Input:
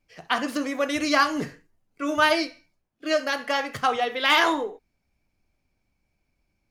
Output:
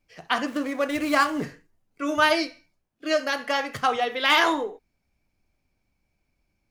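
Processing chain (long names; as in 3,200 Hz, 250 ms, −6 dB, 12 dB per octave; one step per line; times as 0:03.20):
0:00.46–0:01.44: running median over 9 samples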